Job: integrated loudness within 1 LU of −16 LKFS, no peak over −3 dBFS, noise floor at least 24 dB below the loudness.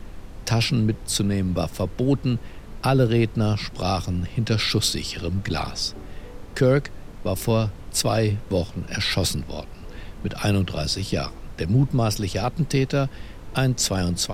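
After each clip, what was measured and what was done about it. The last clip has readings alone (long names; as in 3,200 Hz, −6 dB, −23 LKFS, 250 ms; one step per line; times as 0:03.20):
background noise floor −40 dBFS; target noise floor −48 dBFS; integrated loudness −24.0 LKFS; sample peak −6.5 dBFS; target loudness −16.0 LKFS
→ noise reduction from a noise print 8 dB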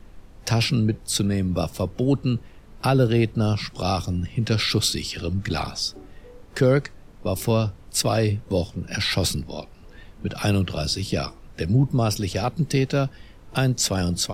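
background noise floor −47 dBFS; target noise floor −48 dBFS
→ noise reduction from a noise print 6 dB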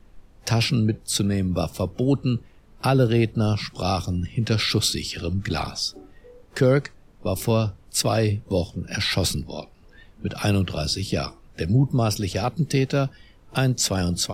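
background noise floor −52 dBFS; integrated loudness −24.0 LKFS; sample peak −7.0 dBFS; target loudness −16.0 LKFS
→ level +8 dB
brickwall limiter −3 dBFS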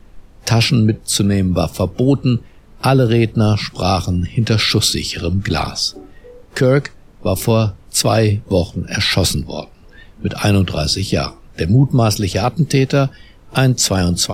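integrated loudness −16.5 LKFS; sample peak −3.0 dBFS; background noise floor −44 dBFS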